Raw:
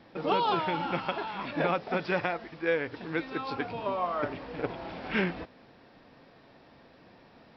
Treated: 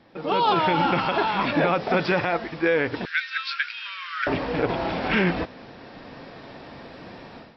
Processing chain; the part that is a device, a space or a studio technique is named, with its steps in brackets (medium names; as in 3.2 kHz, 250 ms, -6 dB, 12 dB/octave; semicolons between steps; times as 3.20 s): 3.05–4.27 s: elliptic high-pass 1.5 kHz, stop band 50 dB; low-bitrate web radio (level rider gain up to 15 dB; peak limiter -11.5 dBFS, peak gain reduction 9.5 dB; MP3 40 kbps 22.05 kHz)